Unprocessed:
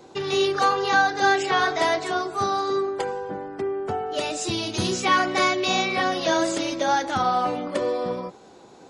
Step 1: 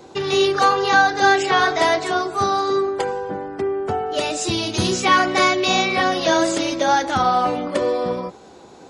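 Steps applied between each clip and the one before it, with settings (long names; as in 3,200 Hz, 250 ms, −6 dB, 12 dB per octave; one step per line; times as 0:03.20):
parametric band 71 Hz +9.5 dB 0.26 octaves
level +4.5 dB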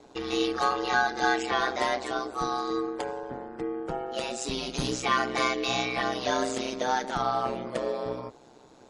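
ring modulation 64 Hz
level −7 dB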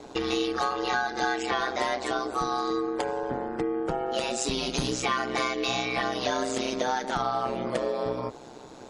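downward compressor 4 to 1, threshold −34 dBFS, peak gain reduction 12.5 dB
level +8.5 dB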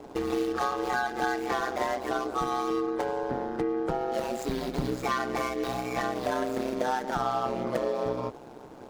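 running median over 15 samples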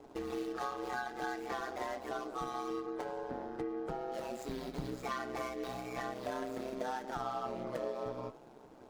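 flanger 0.56 Hz, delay 2.3 ms, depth 6.5 ms, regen −68%
tuned comb filter 650 Hz, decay 0.41 s, mix 60%
level +2 dB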